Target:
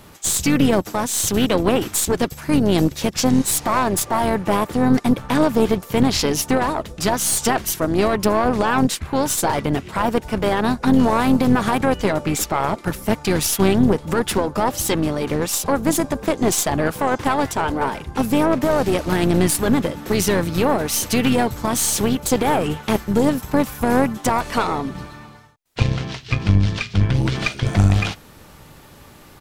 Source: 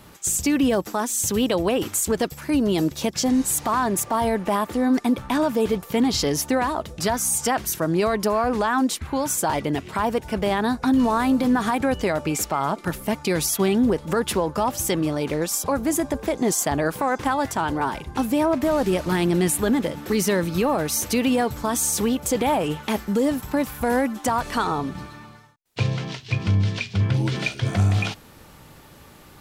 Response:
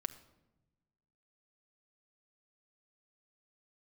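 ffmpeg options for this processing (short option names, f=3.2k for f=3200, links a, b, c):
-filter_complex "[0:a]asplit=4[a][b][c][d];[b]asetrate=22050,aresample=44100,atempo=2,volume=-11dB[e];[c]asetrate=29433,aresample=44100,atempo=1.49831,volume=-15dB[f];[d]asetrate=37084,aresample=44100,atempo=1.18921,volume=-15dB[g];[a][e][f][g]amix=inputs=4:normalize=0,aeval=exprs='0.473*(cos(1*acos(clip(val(0)/0.473,-1,1)))-cos(1*PI/2))+0.0376*(cos(3*acos(clip(val(0)/0.473,-1,1)))-cos(3*PI/2))+0.0531*(cos(4*acos(clip(val(0)/0.473,-1,1)))-cos(4*PI/2))':c=same,volume=4.5dB"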